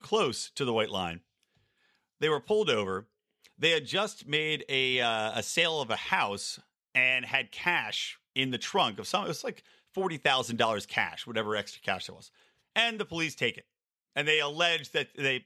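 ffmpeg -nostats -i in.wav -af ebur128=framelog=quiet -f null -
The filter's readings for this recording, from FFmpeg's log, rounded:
Integrated loudness:
  I:         -29.1 LUFS
  Threshold: -39.6 LUFS
Loudness range:
  LRA:         3.4 LU
  Threshold: -49.7 LUFS
  LRA low:   -31.4 LUFS
  LRA high:  -28.0 LUFS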